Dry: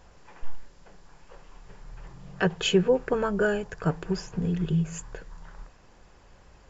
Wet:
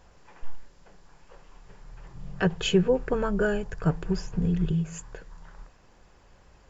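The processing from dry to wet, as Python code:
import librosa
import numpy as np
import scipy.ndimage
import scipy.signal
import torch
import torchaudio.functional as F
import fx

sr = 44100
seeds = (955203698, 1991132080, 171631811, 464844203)

y = fx.low_shelf(x, sr, hz=120.0, db=12.0, at=(2.15, 4.72))
y = F.gain(torch.from_numpy(y), -2.0).numpy()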